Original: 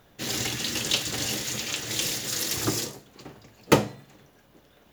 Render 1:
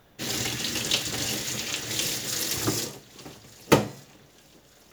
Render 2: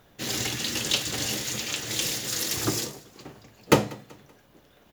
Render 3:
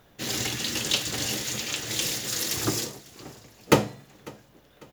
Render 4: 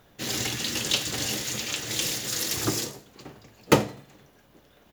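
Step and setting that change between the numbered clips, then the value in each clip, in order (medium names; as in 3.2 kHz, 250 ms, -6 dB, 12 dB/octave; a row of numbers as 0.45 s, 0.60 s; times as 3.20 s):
feedback delay, time: 1196 ms, 191 ms, 548 ms, 84 ms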